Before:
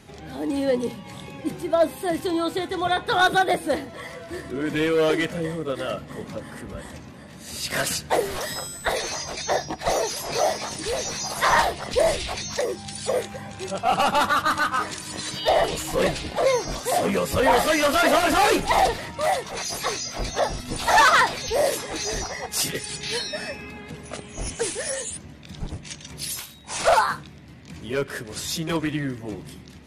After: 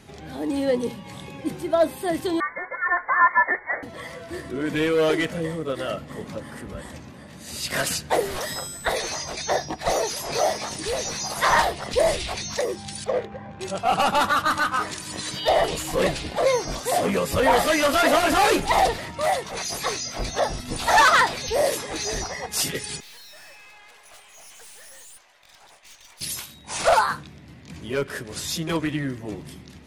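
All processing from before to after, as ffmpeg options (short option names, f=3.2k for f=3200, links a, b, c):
-filter_complex "[0:a]asettb=1/sr,asplit=3[a][b][c];[a]atrim=end=2.404[d];[b]atrim=start=2.4:end=3.83,asetpts=PTS-STARTPTS,afade=t=in:d=0.004:c=qsin,afade=t=out:st=1.426:d=0.004:c=qsin,highpass=930,acontrast=22,lowpass=f=2.1k:t=q:w=0.5098,lowpass=f=2.1k:t=q:w=0.6013,lowpass=f=2.1k:t=q:w=0.9,lowpass=f=2.1k:t=q:w=2.563,afreqshift=-2500[e];[c]atrim=start=3.826[f];[d][e]acrossfade=d=0.004:c1=hsin:c2=qsin[g];[g][f]acrossfade=d=0.004:c1=qsin:c2=hsin,asettb=1/sr,asplit=3[h][i][j];[h]atrim=end=13.044[k];[i]atrim=start=13.04:end=13.61,asetpts=PTS-STARTPTS,afade=t=in:d=0.004:c=qsin,afade=t=out:st=0.566:d=0.004:c=qsin,lowpass=8.2k,bandreject=f=50:t=h:w=6,bandreject=f=100:t=h:w=6,bandreject=f=150:t=h:w=6,bandreject=f=200:t=h:w=6,bandreject=f=250:t=h:w=6,bandreject=f=300:t=h:w=6,bandreject=f=350:t=h:w=6,bandreject=f=400:t=h:w=6,bandreject=f=450:t=h:w=6,adynamicsmooth=sensitivity=2:basefreq=1.4k[l];[j]atrim=start=13.606[m];[k][l]acrossfade=d=0.004:c1=hsin:c2=qsin[n];[n][m]acrossfade=d=0.004:c1=qsin:c2=hsin,asettb=1/sr,asplit=3[o][p][q];[o]atrim=end=23.004[r];[p]atrim=start=23:end=26.21,asetpts=PTS-STARTPTS,afade=t=in:d=0.004:c=qsin,afade=t=out:st=3.206:d=0.004:c=qsin,highpass=f=680:w=0.5412,highpass=f=680:w=1.3066,aeval=exprs='(tanh(178*val(0)+0.6)-tanh(0.6))/178':c=same[s];[q]atrim=start=26.206[t];[r][s]acrossfade=d=0.004:c1=hsin:c2=qsin[u];[u][t]acrossfade=d=0.004:c1=qsin:c2=hsin"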